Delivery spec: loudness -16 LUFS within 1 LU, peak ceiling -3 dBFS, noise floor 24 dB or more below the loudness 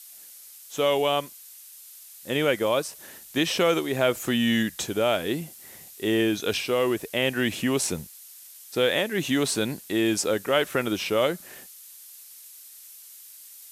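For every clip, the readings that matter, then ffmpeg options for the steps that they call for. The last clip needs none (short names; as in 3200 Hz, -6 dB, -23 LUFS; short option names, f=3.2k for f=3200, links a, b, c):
noise floor -47 dBFS; noise floor target -49 dBFS; loudness -25.0 LUFS; peak -7.5 dBFS; loudness target -16.0 LUFS
-> -af "afftdn=nr=6:nf=-47"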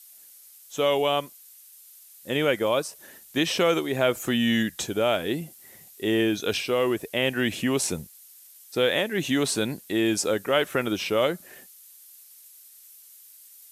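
noise floor -51 dBFS; loudness -25.0 LUFS; peak -8.0 dBFS; loudness target -16.0 LUFS
-> -af "volume=9dB,alimiter=limit=-3dB:level=0:latency=1"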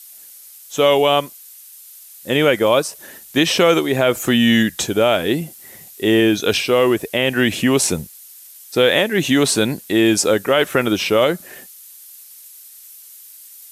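loudness -16.5 LUFS; peak -3.0 dBFS; noise floor -42 dBFS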